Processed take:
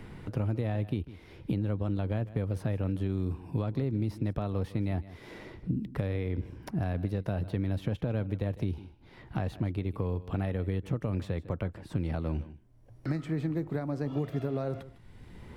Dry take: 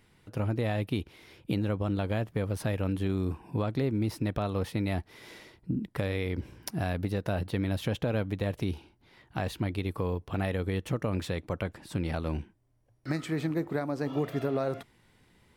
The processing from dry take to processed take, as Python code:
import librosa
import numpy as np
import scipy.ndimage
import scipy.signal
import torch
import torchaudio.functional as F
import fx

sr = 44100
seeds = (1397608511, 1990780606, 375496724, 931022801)

p1 = fx.tilt_eq(x, sr, slope=-2.0)
p2 = p1 + fx.echo_single(p1, sr, ms=153, db=-18.5, dry=0)
p3 = fx.band_squash(p2, sr, depth_pct=70)
y = F.gain(torch.from_numpy(p3), -6.0).numpy()